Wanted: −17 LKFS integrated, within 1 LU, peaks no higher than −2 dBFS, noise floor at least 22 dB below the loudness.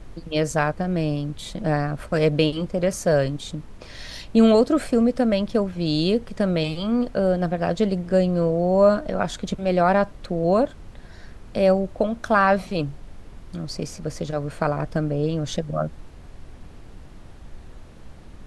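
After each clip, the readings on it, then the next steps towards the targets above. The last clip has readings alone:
background noise floor −43 dBFS; target noise floor −45 dBFS; integrated loudness −22.5 LKFS; sample peak −5.5 dBFS; target loudness −17.0 LKFS
→ noise reduction from a noise print 6 dB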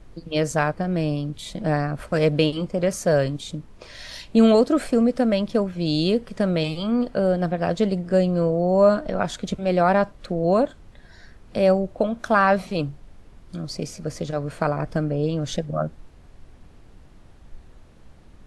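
background noise floor −49 dBFS; integrated loudness −22.5 LKFS; sample peak −5.5 dBFS; target loudness −17.0 LKFS
→ level +5.5 dB
brickwall limiter −2 dBFS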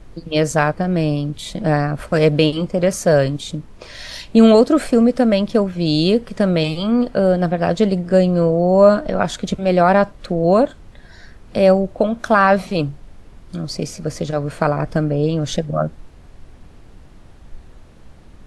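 integrated loudness −17.0 LKFS; sample peak −2.0 dBFS; background noise floor −44 dBFS

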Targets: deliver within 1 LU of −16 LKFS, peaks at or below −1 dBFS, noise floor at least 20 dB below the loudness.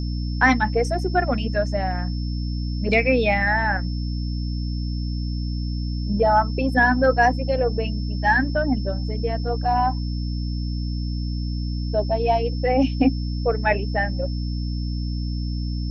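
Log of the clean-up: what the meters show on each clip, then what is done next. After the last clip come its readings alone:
mains hum 60 Hz; hum harmonics up to 300 Hz; level of the hum −23 dBFS; interfering tone 5,300 Hz; level of the tone −40 dBFS; integrated loudness −23.0 LKFS; sample peak −3.5 dBFS; target loudness −16.0 LKFS
→ hum removal 60 Hz, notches 5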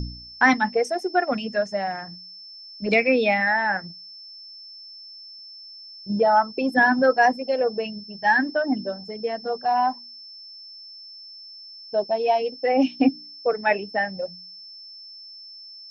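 mains hum none found; interfering tone 5,300 Hz; level of the tone −40 dBFS
→ notch filter 5,300 Hz, Q 30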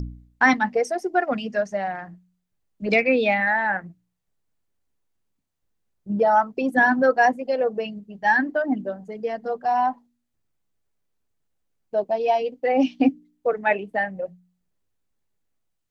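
interfering tone none found; integrated loudness −22.5 LKFS; sample peak −4.5 dBFS; target loudness −16.0 LKFS
→ level +6.5 dB
brickwall limiter −1 dBFS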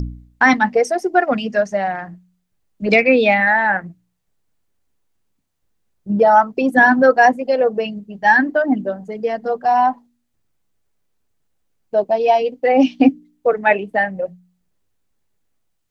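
integrated loudness −16.0 LKFS; sample peak −1.0 dBFS; background noise floor −70 dBFS

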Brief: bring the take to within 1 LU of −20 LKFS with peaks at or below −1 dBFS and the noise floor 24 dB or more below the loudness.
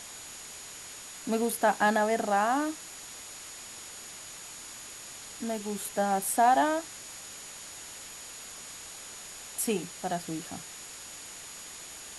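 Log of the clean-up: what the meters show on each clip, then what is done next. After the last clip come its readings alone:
interfering tone 6,800 Hz; level of the tone −47 dBFS; background noise floor −45 dBFS; target noise floor −56 dBFS; integrated loudness −32.0 LKFS; sample peak −12.5 dBFS; target loudness −20.0 LKFS
→ notch filter 6,800 Hz, Q 30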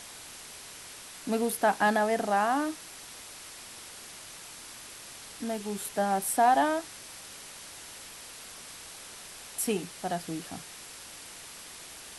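interfering tone none found; background noise floor −46 dBFS; target noise floor −53 dBFS
→ broadband denoise 7 dB, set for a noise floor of −46 dBFS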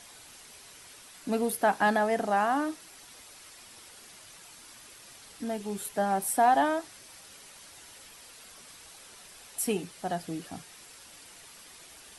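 background noise floor −51 dBFS; target noise floor −53 dBFS
→ broadband denoise 6 dB, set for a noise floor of −51 dBFS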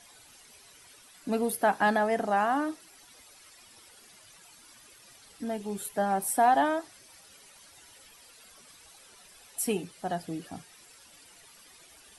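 background noise floor −56 dBFS; integrated loudness −28.5 LKFS; sample peak −12.5 dBFS; target loudness −20.0 LKFS
→ level +8.5 dB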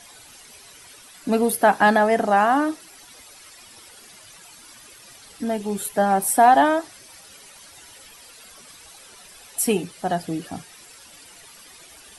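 integrated loudness −20.0 LKFS; sample peak −4.0 dBFS; background noise floor −47 dBFS

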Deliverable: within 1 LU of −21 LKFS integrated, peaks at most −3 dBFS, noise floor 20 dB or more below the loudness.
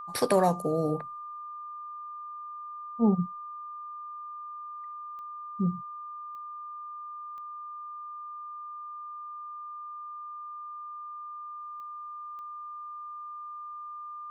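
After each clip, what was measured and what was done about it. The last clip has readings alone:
number of clicks 5; interfering tone 1,200 Hz; level of the tone −38 dBFS; integrated loudness −35.0 LKFS; sample peak −12.0 dBFS; target loudness −21.0 LKFS
→ click removal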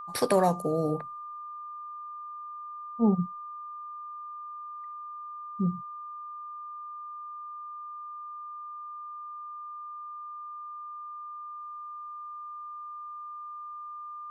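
number of clicks 0; interfering tone 1,200 Hz; level of the tone −38 dBFS
→ notch filter 1,200 Hz, Q 30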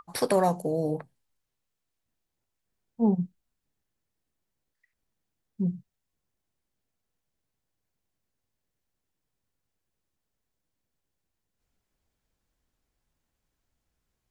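interfering tone none found; integrated loudness −28.0 LKFS; sample peak −11.5 dBFS; target loudness −21.0 LKFS
→ level +7 dB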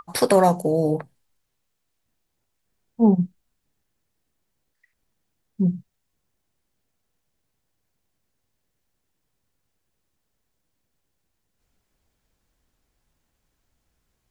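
integrated loudness −21.0 LKFS; sample peak −4.5 dBFS; background noise floor −76 dBFS

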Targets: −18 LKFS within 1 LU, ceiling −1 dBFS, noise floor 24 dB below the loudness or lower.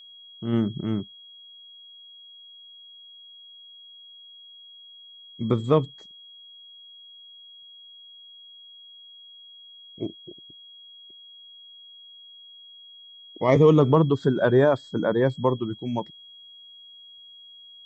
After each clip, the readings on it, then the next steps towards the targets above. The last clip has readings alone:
interfering tone 3,300 Hz; level of the tone −45 dBFS; integrated loudness −23.0 LKFS; sample peak −6.0 dBFS; target loudness −18.0 LKFS
→ notch filter 3,300 Hz, Q 30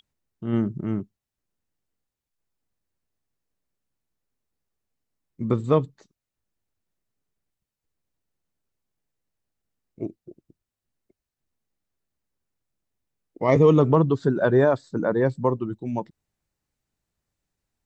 interfering tone none found; integrated loudness −22.5 LKFS; sample peak −6.5 dBFS; target loudness −18.0 LKFS
→ level +4.5 dB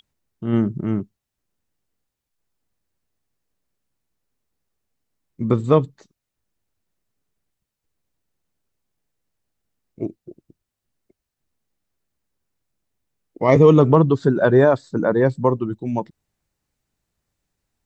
integrated loudness −18.0 LKFS; sample peak −2.0 dBFS; background noise floor −83 dBFS

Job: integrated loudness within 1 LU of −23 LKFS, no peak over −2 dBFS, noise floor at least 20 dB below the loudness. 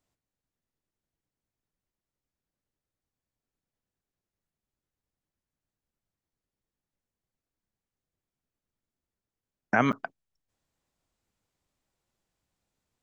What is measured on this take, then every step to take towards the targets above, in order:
number of dropouts 1; longest dropout 8.0 ms; integrated loudness −27.5 LKFS; sample peak −7.0 dBFS; target loudness −23.0 LKFS
→ repair the gap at 0:09.92, 8 ms
level +4.5 dB

